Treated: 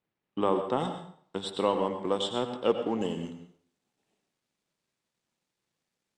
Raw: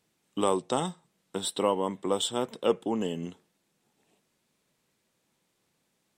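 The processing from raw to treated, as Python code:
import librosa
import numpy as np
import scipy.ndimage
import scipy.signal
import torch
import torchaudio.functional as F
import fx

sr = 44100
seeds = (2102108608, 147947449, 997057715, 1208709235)

y = fx.law_mismatch(x, sr, coded='A')
y = fx.lowpass(y, sr, hz=fx.steps((0.0, 2400.0), (0.8, 4600.0), (3.01, 8200.0)), slope=12)
y = fx.rev_plate(y, sr, seeds[0], rt60_s=0.57, hf_ratio=0.85, predelay_ms=80, drr_db=7.5)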